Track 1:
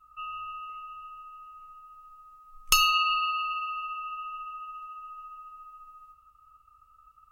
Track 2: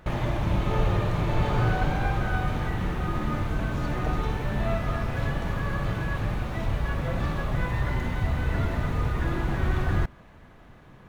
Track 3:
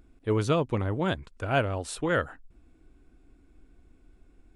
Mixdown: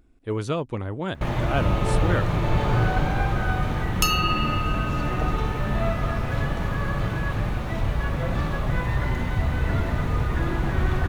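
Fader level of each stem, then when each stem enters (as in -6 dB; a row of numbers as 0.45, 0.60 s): -1.5, +2.5, -1.5 dB; 1.30, 1.15, 0.00 s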